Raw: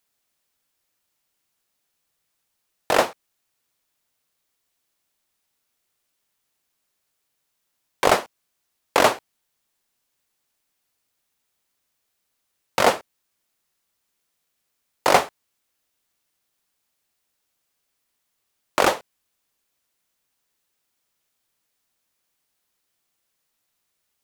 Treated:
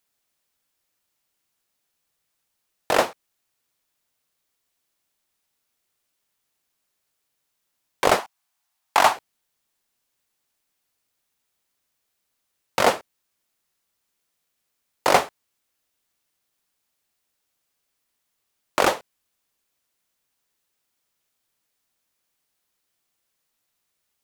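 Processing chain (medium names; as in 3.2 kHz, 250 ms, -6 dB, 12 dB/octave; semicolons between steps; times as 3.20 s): 8.19–9.16 s: resonant low shelf 630 Hz -6.5 dB, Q 3; trim -1 dB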